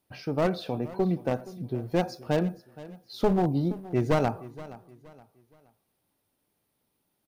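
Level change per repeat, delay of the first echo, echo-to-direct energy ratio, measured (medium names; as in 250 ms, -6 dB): -9.5 dB, 471 ms, -17.5 dB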